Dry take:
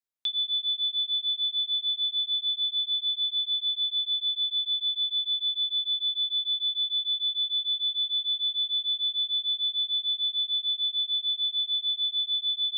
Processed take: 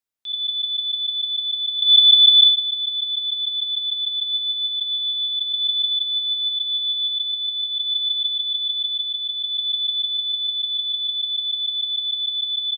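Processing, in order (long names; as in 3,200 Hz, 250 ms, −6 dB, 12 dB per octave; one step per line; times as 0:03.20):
0:01.79–0:02.44: parametric band 3,300 Hz +13 dB 1.8 octaves
0:03.74–0:04.16: delay throw 580 ms, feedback 85%, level −0.5 dB
transient designer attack −11 dB, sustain +12 dB
level +3.5 dB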